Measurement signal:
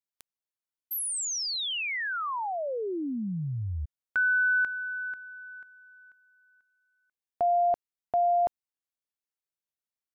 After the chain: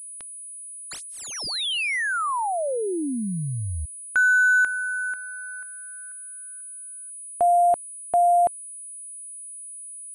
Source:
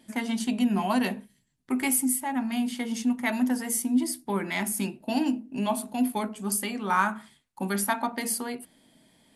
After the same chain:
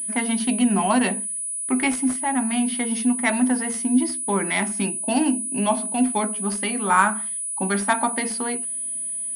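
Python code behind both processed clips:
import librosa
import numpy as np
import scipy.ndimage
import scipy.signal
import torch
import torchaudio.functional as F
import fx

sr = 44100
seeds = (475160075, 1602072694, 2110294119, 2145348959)

y = fx.low_shelf(x, sr, hz=230.0, db=-4.0)
y = fx.pwm(y, sr, carrier_hz=9900.0)
y = y * librosa.db_to_amplitude(6.5)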